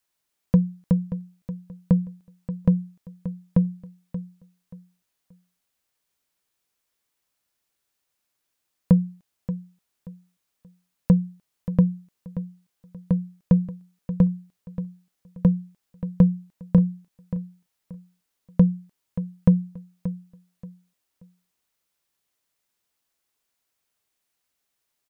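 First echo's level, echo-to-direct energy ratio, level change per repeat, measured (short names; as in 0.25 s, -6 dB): -12.5 dB, -12.0 dB, -11.5 dB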